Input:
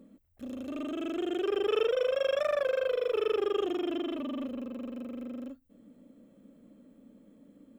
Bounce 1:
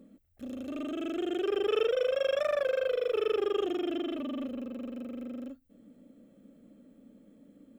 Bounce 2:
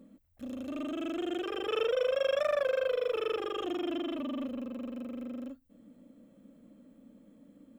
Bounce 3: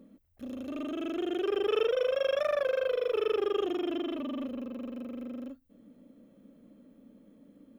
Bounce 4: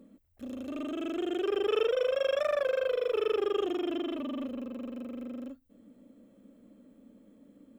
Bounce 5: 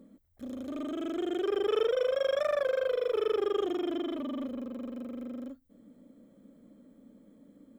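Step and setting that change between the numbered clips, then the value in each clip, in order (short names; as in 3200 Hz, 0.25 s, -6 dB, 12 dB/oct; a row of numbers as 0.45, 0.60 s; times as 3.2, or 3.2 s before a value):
notch, frequency: 1000, 400, 7700, 160, 2700 Hz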